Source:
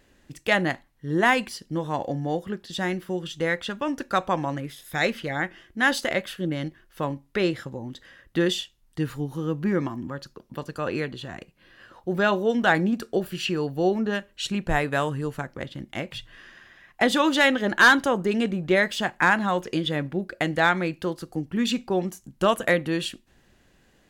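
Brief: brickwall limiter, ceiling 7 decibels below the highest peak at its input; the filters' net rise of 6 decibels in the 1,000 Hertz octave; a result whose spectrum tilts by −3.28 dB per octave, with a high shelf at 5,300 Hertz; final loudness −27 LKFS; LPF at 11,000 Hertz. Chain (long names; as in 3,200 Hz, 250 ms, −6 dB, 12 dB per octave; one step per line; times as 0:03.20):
low-pass filter 11,000 Hz
parametric band 1,000 Hz +7.5 dB
high-shelf EQ 5,300 Hz +3.5 dB
level −2.5 dB
brickwall limiter −11.5 dBFS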